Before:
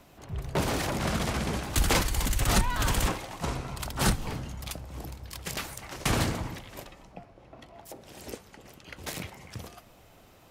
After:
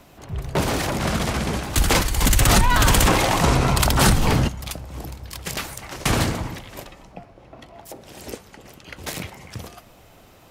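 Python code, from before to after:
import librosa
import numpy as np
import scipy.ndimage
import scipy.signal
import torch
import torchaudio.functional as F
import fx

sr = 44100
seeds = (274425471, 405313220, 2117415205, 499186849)

y = fx.env_flatten(x, sr, amount_pct=70, at=(2.21, 4.47), fade=0.02)
y = y * 10.0 ** (6.0 / 20.0)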